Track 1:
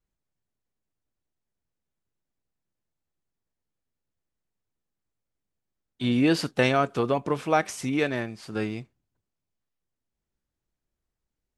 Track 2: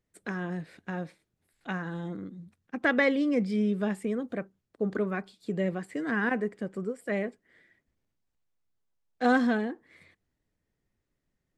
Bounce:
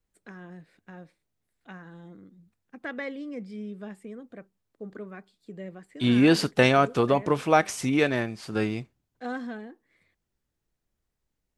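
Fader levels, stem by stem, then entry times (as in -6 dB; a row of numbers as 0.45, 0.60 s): +2.5, -10.5 dB; 0.00, 0.00 s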